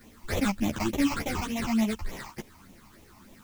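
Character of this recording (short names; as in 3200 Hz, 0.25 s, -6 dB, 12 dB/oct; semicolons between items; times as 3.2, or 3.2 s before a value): aliases and images of a low sample rate 2900 Hz, jitter 20%; phasing stages 8, 3.4 Hz, lowest notch 460–1500 Hz; a quantiser's noise floor 10-bit, dither triangular; a shimmering, thickened sound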